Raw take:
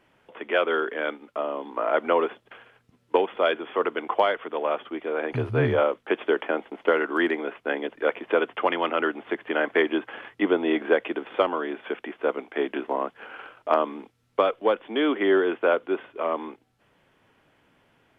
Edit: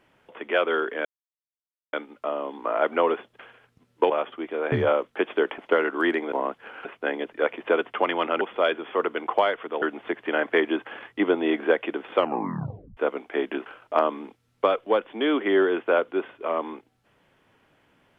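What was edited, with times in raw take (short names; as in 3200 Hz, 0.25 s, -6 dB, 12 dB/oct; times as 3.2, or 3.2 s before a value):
1.05 insert silence 0.88 s
3.22–4.63 move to 9.04
5.25–5.63 cut
6.49–6.74 cut
11.4 tape stop 0.79 s
12.88–13.41 move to 7.48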